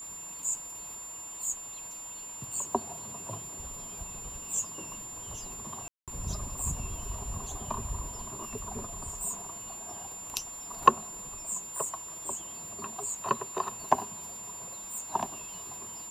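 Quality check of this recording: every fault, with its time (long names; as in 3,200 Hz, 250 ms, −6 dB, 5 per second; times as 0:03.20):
surface crackle 15 per second −42 dBFS
whistle 7,200 Hz −40 dBFS
0:05.88–0:06.08: drop-out 197 ms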